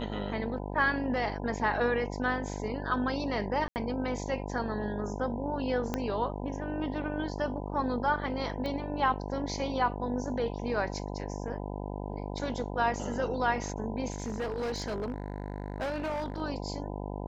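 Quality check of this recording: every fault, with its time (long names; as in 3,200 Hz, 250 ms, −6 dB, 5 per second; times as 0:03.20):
mains buzz 50 Hz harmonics 20 −37 dBFS
0:03.68–0:03.76: drop-out 79 ms
0:05.94: click −16 dBFS
0:08.66: click −24 dBFS
0:14.12–0:16.42: clipping −29.5 dBFS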